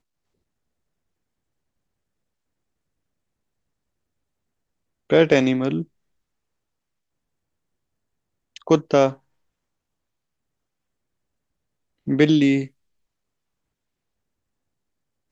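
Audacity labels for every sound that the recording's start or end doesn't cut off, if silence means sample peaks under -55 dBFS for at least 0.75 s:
5.100000	5.880000	sound
8.560000	9.190000	sound
12.060000	12.700000	sound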